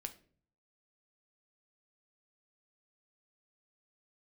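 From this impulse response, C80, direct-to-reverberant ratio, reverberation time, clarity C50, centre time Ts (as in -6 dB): 20.0 dB, 7.0 dB, 0.45 s, 15.5 dB, 6 ms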